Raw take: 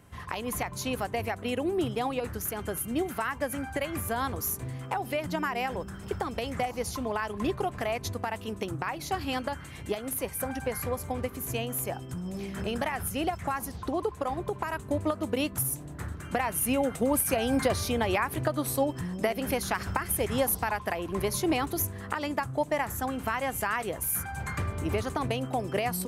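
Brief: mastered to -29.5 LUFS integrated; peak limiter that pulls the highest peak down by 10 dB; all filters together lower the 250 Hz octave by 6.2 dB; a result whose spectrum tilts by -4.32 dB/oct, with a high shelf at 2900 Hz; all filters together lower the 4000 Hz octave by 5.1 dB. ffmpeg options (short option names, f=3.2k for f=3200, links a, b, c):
-af "equalizer=f=250:t=o:g=-8,highshelf=f=2.9k:g=-4,equalizer=f=4k:t=o:g=-4,volume=5dB,alimiter=limit=-16.5dB:level=0:latency=1"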